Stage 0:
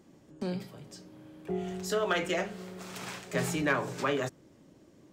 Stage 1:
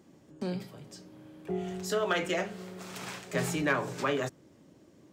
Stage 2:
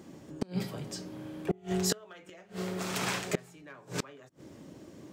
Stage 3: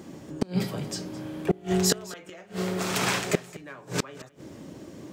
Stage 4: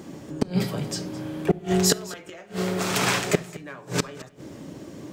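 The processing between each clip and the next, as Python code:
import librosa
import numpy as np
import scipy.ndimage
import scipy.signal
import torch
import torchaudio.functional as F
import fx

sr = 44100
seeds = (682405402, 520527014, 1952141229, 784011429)

y1 = scipy.signal.sosfilt(scipy.signal.butter(2, 54.0, 'highpass', fs=sr, output='sos'), x)
y2 = fx.gate_flip(y1, sr, shuts_db=-25.0, range_db=-30)
y2 = y2 * librosa.db_to_amplitude(8.5)
y3 = y2 + 10.0 ** (-18.5 / 20.0) * np.pad(y2, (int(214 * sr / 1000.0), 0))[:len(y2)]
y3 = y3 * librosa.db_to_amplitude(6.5)
y4 = fx.room_shoebox(y3, sr, seeds[0], volume_m3=1900.0, walls='furnished', distance_m=0.32)
y4 = y4 * librosa.db_to_amplitude(3.0)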